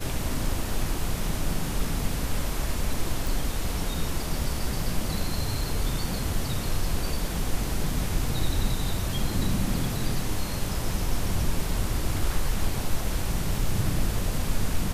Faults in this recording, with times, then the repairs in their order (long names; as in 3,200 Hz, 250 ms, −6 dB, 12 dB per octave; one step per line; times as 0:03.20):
0:03.27: click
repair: click removal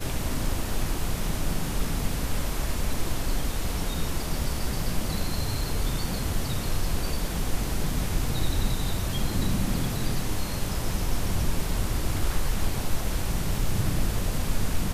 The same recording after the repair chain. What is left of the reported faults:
none of them is left